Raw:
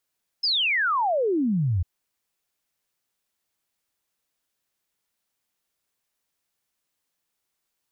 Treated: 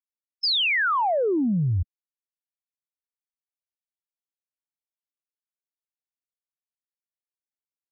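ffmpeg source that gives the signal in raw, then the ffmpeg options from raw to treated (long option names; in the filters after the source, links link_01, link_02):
-f lavfi -i "aevalsrc='0.1*clip(min(t,1.4-t)/0.01,0,1)*sin(2*PI*5300*1.4/log(81/5300)*(exp(log(81/5300)*t/1.4)-1))':duration=1.4:sample_rate=44100"
-af "aeval=exprs='val(0)+0.5*0.0141*sgn(val(0))':channel_layout=same,afftfilt=real='re*gte(hypot(re,im),0.02)':imag='im*gte(hypot(re,im),0.02)':win_size=1024:overlap=0.75"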